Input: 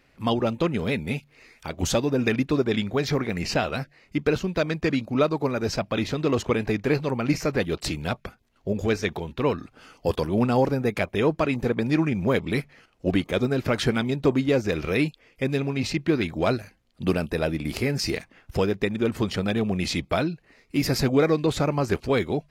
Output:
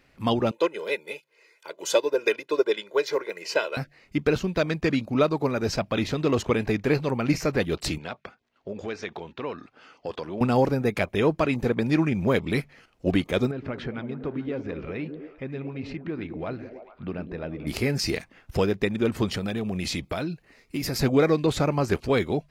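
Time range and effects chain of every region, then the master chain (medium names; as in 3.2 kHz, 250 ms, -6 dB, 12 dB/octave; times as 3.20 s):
0.51–3.77 s: high-pass 290 Hz 24 dB/octave + comb 2 ms, depth 90% + upward expansion, over -33 dBFS
7.98–10.41 s: high-pass 430 Hz 6 dB/octave + distance through air 120 m + compression 2:1, threshold -31 dBFS
13.51–17.67 s: low-pass 2.4 kHz + compression 1.5:1, threshold -46 dBFS + repeats whose band climbs or falls 109 ms, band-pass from 230 Hz, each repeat 0.7 oct, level -4.5 dB
19.32–21.01 s: treble shelf 8 kHz +5.5 dB + compression 5:1, threshold -25 dBFS
whole clip: none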